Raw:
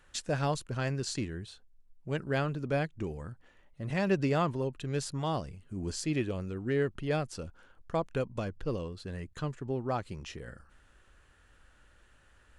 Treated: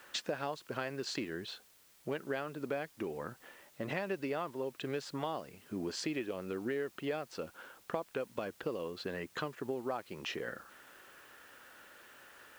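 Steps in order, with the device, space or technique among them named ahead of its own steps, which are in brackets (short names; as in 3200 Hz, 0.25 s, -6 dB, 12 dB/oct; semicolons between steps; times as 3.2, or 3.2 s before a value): baby monitor (BPF 320–3800 Hz; compressor, threshold -44 dBFS, peak gain reduction 18 dB; white noise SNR 24 dB); gain +9.5 dB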